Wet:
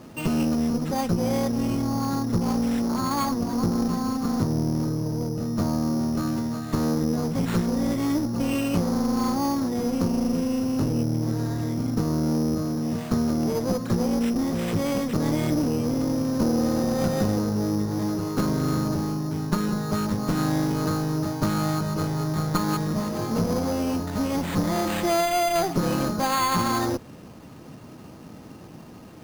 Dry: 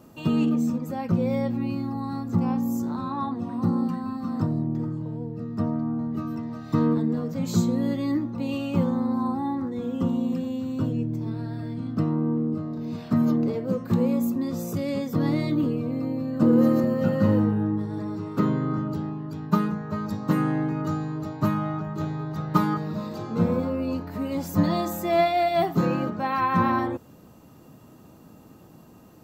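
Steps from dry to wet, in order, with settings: compression 6:1, threshold -24 dBFS, peak gain reduction 10 dB; one-sided clip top -32 dBFS; careless resampling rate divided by 8×, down none, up hold; trim +6.5 dB

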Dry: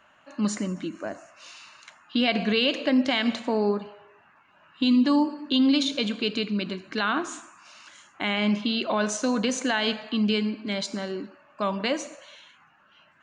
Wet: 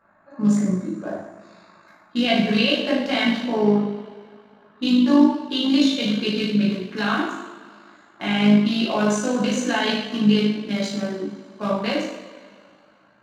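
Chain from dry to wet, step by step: local Wiener filter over 15 samples; two-slope reverb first 0.74 s, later 2.6 s, from -18 dB, DRR -7.5 dB; AM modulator 53 Hz, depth 25%; trim -2.5 dB

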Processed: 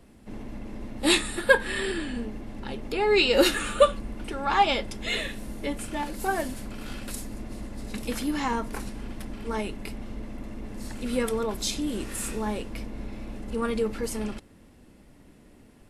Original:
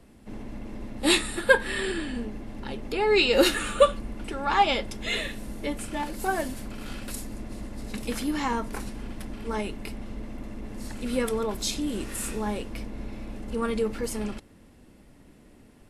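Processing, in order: wow and flutter 25 cents

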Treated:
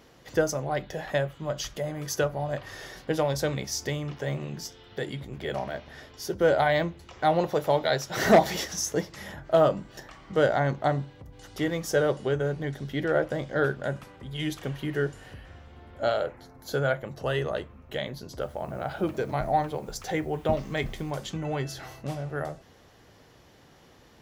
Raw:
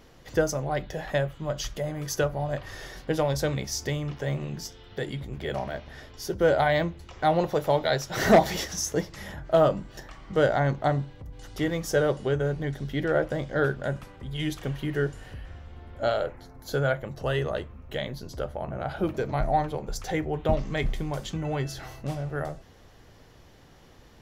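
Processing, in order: 18.41–21.11 s: word length cut 10-bit, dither none; high-pass 120 Hz 6 dB/octave

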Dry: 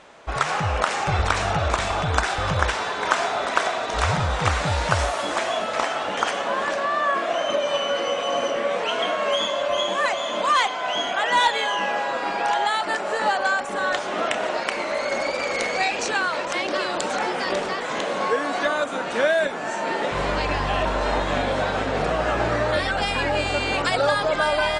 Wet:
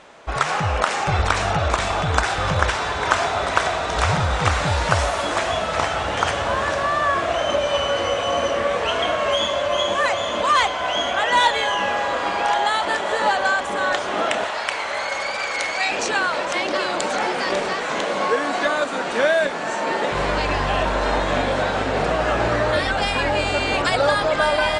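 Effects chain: 14.44–15.90 s: high-pass 920 Hz 12 dB/octave; echo that smears into a reverb 1746 ms, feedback 61%, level -11.5 dB; trim +2 dB

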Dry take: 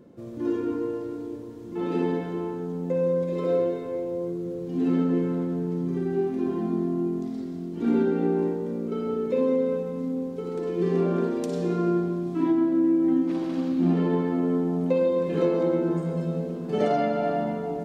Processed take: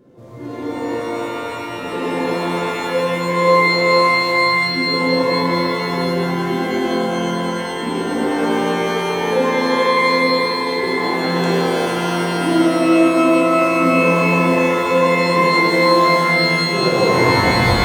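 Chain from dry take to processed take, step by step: tape stop on the ending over 1.17 s; hum notches 50/100/150/200/250/300/350 Hz; pitch-shifted reverb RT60 3.1 s, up +12 st, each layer -2 dB, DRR -6.5 dB

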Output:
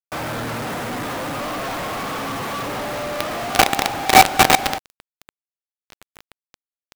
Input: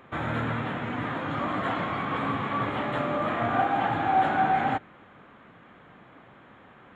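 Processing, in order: peaking EQ 600 Hz +7 dB 1.5 oct; companded quantiser 2-bit; trim -1 dB

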